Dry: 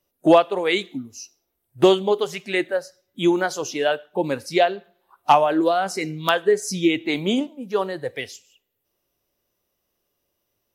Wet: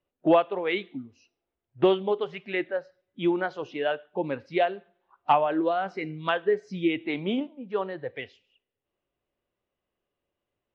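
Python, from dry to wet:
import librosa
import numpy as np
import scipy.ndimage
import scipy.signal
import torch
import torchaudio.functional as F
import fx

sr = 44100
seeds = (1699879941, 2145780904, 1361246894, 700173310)

y = scipy.signal.sosfilt(scipy.signal.butter(4, 3100.0, 'lowpass', fs=sr, output='sos'), x)
y = y * 10.0 ** (-6.0 / 20.0)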